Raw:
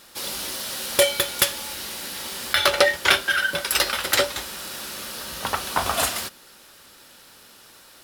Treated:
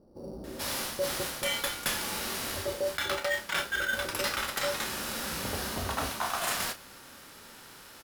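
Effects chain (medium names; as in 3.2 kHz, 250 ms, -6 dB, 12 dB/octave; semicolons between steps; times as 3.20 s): doubling 31 ms -12 dB; bands offset in time lows, highs 440 ms, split 580 Hz; in parallel at -4.5 dB: sample-rate reducer 5.1 kHz, jitter 0%; on the sum: harmonic-percussive split percussive -6 dB; reverse; compression 6:1, threshold -28 dBFS, peak gain reduction 13.5 dB; reverse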